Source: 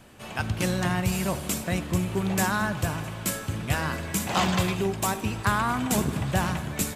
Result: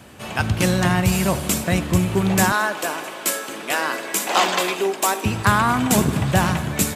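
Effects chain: HPF 50 Hz 24 dB/oct, from 2.52 s 310 Hz, from 5.25 s 69 Hz; gain +7.5 dB

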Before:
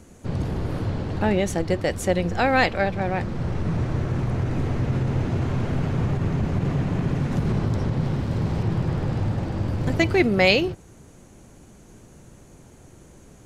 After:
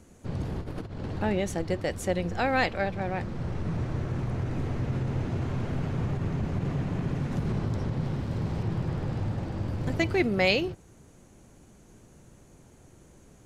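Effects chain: 0.61–1.06 negative-ratio compressor -29 dBFS, ratio -0.5; gain -6 dB

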